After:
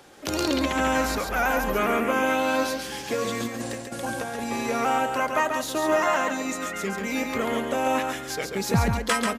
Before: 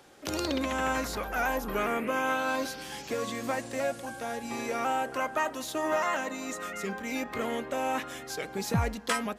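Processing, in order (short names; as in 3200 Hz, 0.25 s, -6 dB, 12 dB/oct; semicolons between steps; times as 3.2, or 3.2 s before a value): 3.4–4.44 negative-ratio compressor -37 dBFS, ratio -0.5; echo 0.138 s -5 dB; gain +5 dB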